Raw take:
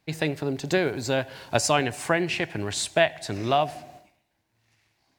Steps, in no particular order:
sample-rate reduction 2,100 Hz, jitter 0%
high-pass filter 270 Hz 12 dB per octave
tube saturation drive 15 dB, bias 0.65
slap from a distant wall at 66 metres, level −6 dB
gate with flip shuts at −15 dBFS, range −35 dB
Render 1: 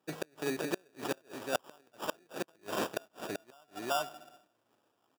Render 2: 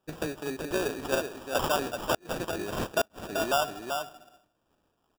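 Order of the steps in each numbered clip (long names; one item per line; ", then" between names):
slap from a distant wall, then sample-rate reduction, then gate with flip, then tube saturation, then high-pass filter
slap from a distant wall, then tube saturation, then high-pass filter, then sample-rate reduction, then gate with flip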